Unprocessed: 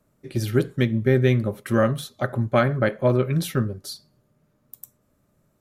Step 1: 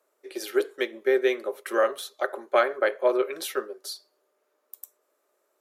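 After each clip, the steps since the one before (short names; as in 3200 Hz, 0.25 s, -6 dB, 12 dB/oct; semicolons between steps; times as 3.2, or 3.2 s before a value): elliptic high-pass 380 Hz, stop band 80 dB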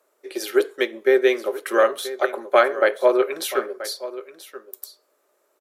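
echo 0.981 s -15 dB; gain +5.5 dB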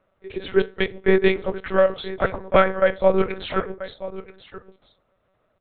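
monotone LPC vocoder at 8 kHz 190 Hz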